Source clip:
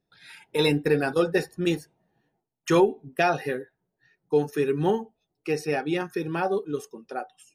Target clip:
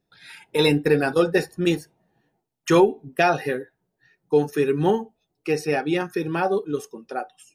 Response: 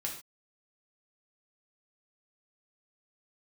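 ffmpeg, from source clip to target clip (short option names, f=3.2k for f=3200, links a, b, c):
-filter_complex "[0:a]asplit=2[a][b];[1:a]atrim=start_sample=2205,atrim=end_sample=3087[c];[b][c]afir=irnorm=-1:irlink=0,volume=-22dB[d];[a][d]amix=inputs=2:normalize=0,volume=3dB"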